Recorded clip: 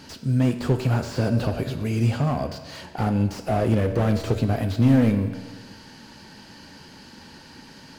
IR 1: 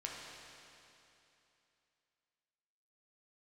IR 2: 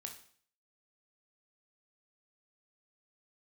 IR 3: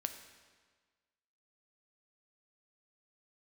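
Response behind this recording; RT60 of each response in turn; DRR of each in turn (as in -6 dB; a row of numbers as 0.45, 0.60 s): 3; 2.9, 0.55, 1.5 s; -3.0, 3.5, 7.0 dB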